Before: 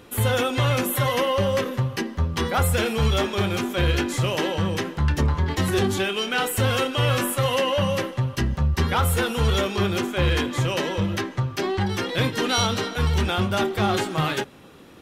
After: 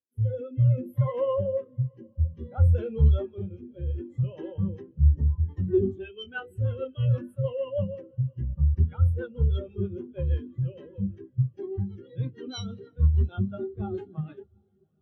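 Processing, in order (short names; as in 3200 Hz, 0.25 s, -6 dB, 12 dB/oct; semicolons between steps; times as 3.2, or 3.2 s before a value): rotary speaker horn 0.6 Hz, later 6.3 Hz, at 4.84; diffused feedback echo 0.756 s, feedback 61%, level -14 dB; spectral expander 2.5:1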